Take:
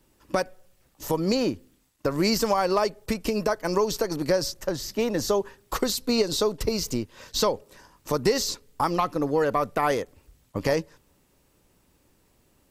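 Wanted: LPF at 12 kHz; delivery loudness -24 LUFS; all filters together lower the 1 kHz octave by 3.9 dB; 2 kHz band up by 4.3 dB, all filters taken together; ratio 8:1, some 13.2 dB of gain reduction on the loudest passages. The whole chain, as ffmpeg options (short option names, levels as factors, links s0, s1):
-af "lowpass=12000,equalizer=f=1000:t=o:g=-7,equalizer=f=2000:t=o:g=7.5,acompressor=threshold=0.0224:ratio=8,volume=4.73"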